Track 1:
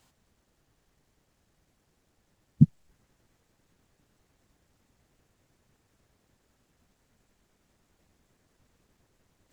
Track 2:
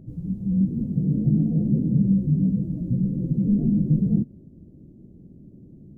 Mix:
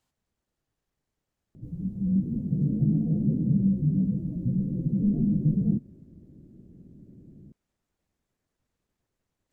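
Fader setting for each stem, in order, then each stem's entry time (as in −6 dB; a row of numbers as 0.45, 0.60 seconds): −13.0, −3.5 decibels; 0.00, 1.55 seconds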